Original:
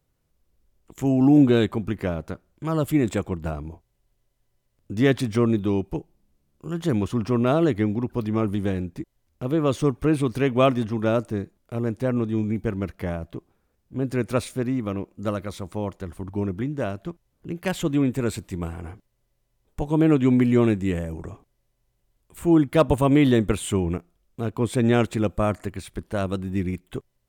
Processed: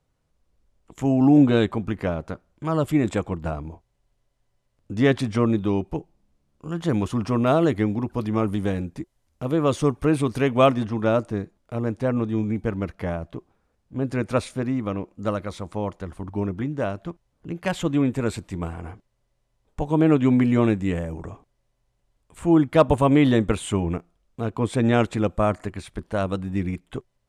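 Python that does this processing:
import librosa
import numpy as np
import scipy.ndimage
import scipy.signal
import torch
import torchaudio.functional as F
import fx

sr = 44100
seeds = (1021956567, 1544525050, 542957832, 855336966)

y = fx.high_shelf(x, sr, hz=8500.0, db=11.0, at=(6.93, 10.72))
y = scipy.signal.sosfilt(scipy.signal.bessel(8, 8600.0, 'lowpass', norm='mag', fs=sr, output='sos'), y)
y = fx.peak_eq(y, sr, hz=890.0, db=3.5, octaves=1.5)
y = fx.notch(y, sr, hz=370.0, q=12.0)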